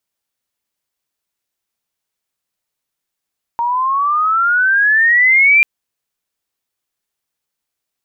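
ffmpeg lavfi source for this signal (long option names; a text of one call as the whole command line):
ffmpeg -f lavfi -i "aevalsrc='pow(10,(-14+8*t/2.04)/20)*sin(2*PI*930*2.04/log(2400/930)*(exp(log(2400/930)*t/2.04)-1))':duration=2.04:sample_rate=44100" out.wav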